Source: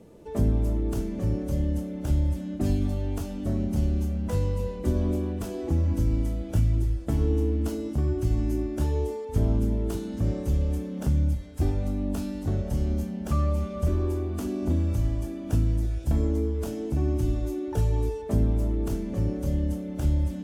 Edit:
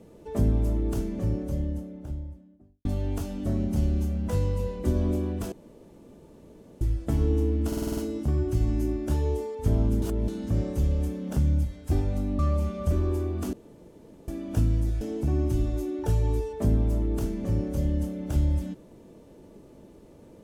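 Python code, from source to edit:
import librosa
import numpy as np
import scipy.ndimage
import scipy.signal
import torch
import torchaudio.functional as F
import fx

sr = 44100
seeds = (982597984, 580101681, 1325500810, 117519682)

y = fx.studio_fade_out(x, sr, start_s=0.92, length_s=1.93)
y = fx.edit(y, sr, fx.room_tone_fill(start_s=5.52, length_s=1.29),
    fx.stutter(start_s=7.67, slice_s=0.05, count=7),
    fx.reverse_span(start_s=9.72, length_s=0.26),
    fx.cut(start_s=12.09, length_s=1.26),
    fx.room_tone_fill(start_s=14.49, length_s=0.75),
    fx.cut(start_s=15.97, length_s=0.73), tone=tone)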